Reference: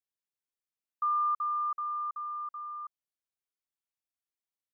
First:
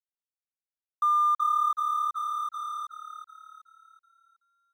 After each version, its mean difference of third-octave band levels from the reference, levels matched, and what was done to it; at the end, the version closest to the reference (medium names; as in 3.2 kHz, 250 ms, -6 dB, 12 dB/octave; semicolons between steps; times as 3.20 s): 4.0 dB: high-pass 1 kHz 12 dB/octave; crossover distortion -52.5 dBFS; frequency-shifting echo 374 ms, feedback 44%, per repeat +36 Hz, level -8 dB; trim +7.5 dB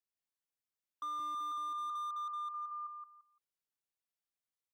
6.0 dB: on a send: feedback delay 171 ms, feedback 22%, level -4 dB; on the sum: slew-rate limiter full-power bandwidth 24 Hz; trim -4 dB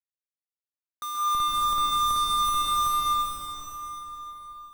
18.0 dB: peaking EQ 1.1 kHz +4 dB 1.1 oct; Schmitt trigger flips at -37 dBFS; plate-style reverb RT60 4.4 s, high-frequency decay 0.8×, pre-delay 120 ms, DRR -7 dB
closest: first